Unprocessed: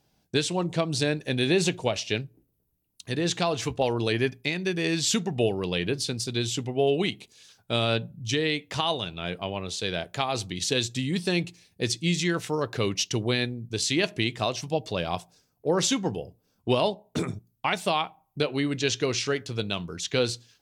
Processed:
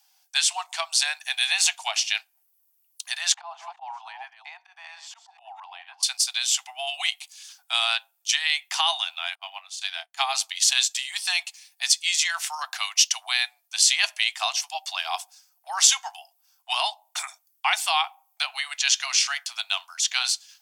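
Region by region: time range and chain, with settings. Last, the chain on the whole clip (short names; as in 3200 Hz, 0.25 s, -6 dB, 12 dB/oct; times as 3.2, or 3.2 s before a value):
3.34–6.03 reverse delay 0.226 s, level -10.5 dB + band-pass 860 Hz, Q 3.4 + auto swell 0.114 s
9.35–10.21 doubler 30 ms -11 dB + upward expander 2.5:1, over -45 dBFS
whole clip: steep high-pass 710 Hz 96 dB/oct; high shelf 3300 Hz +11 dB; notch 3900 Hz, Q 14; gain +2 dB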